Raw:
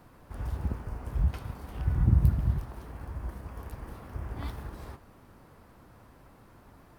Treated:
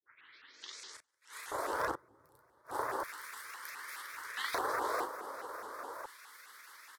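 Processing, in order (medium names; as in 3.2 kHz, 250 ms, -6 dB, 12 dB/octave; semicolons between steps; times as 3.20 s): tape start-up on the opening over 1.85 s; feedback delay 439 ms, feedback 57%, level -16 dB; granulator, pitch spread up and down by 0 st; inverted gate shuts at -23 dBFS, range -33 dB; high-pass 150 Hz 6 dB/octave; treble shelf 2.1 kHz +11.5 dB; static phaser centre 720 Hz, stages 6; doubling 37 ms -5.5 dB; on a send at -22.5 dB: reverberation RT60 0.30 s, pre-delay 3 ms; on the sum: LFO high-pass square 0.33 Hz 670–2300 Hz; tilt EQ -2.5 dB/octave; vibrato with a chosen wave saw up 4.8 Hz, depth 250 cents; trim +12.5 dB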